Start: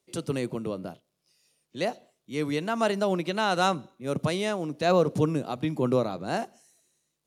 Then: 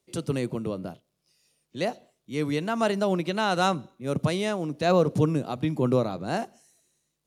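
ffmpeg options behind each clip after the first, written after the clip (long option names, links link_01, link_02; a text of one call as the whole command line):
ffmpeg -i in.wav -af "lowshelf=frequency=150:gain=6.5" out.wav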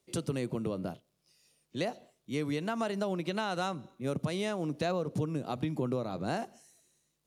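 ffmpeg -i in.wav -af "acompressor=threshold=-29dB:ratio=6" out.wav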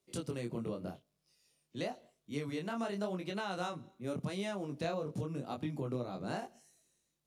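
ffmpeg -i in.wav -af "flanger=delay=20:depth=6:speed=0.89,volume=-2dB" out.wav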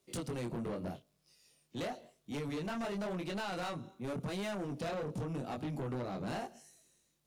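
ffmpeg -i in.wav -af "asoftclip=type=tanh:threshold=-40dB,volume=5.5dB" out.wav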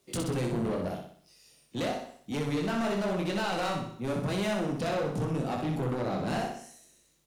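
ffmpeg -i in.wav -af "aecho=1:1:62|124|186|248|310|372:0.596|0.268|0.121|0.0543|0.0244|0.011,volume=6.5dB" out.wav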